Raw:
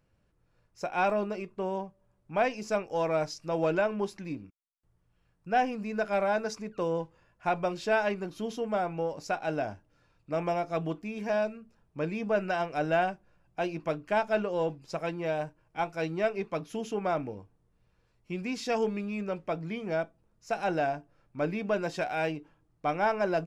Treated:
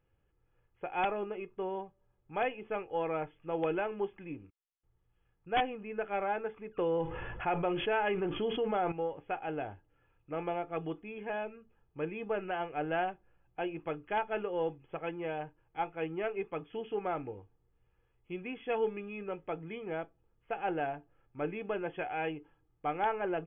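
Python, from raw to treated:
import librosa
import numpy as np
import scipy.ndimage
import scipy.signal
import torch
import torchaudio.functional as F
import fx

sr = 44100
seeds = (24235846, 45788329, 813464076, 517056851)

y = x + 0.49 * np.pad(x, (int(2.4 * sr / 1000.0), 0))[:len(x)]
y = (np.mod(10.0 ** (16.0 / 20.0) * y + 1.0, 2.0) - 1.0) / 10.0 ** (16.0 / 20.0)
y = fx.brickwall_lowpass(y, sr, high_hz=3500.0)
y = fx.env_flatten(y, sr, amount_pct=70, at=(6.77, 8.92))
y = y * 10.0 ** (-5.0 / 20.0)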